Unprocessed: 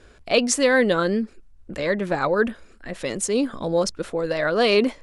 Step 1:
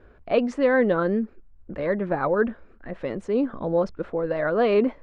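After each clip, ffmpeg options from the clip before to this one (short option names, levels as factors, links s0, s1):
-af "lowpass=1500,volume=0.891"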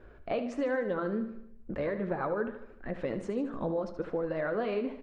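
-filter_complex "[0:a]acompressor=threshold=0.0398:ratio=6,flanger=delay=5.2:depth=4.1:regen=-66:speed=1.4:shape=sinusoidal,asplit=2[s0][s1];[s1]aecho=0:1:75|150|225|300|375|450:0.282|0.149|0.0792|0.042|0.0222|0.0118[s2];[s0][s2]amix=inputs=2:normalize=0,volume=1.41"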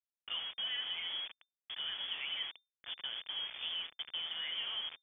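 -af "afreqshift=63,acrusher=bits=5:mix=0:aa=0.000001,lowpass=f=3100:t=q:w=0.5098,lowpass=f=3100:t=q:w=0.6013,lowpass=f=3100:t=q:w=0.9,lowpass=f=3100:t=q:w=2.563,afreqshift=-3600,volume=0.376"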